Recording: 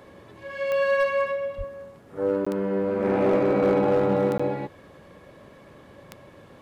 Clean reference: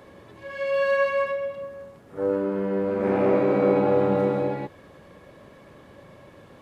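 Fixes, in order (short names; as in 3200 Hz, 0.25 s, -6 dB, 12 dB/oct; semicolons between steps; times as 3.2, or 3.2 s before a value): clip repair -15 dBFS; de-click; 1.57–1.69 HPF 140 Hz 24 dB/oct; interpolate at 2.45/4.38, 15 ms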